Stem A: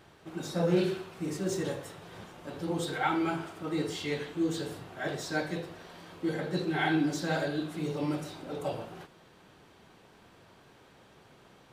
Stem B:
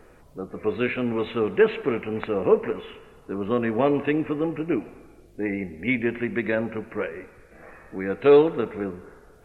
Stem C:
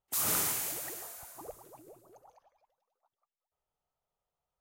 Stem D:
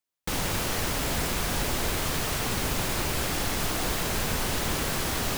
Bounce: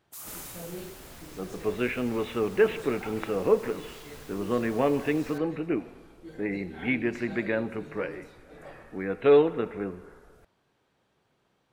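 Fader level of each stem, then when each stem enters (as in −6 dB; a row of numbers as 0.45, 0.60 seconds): −14.0, −3.5, −11.5, −20.0 decibels; 0.00, 1.00, 0.00, 0.00 seconds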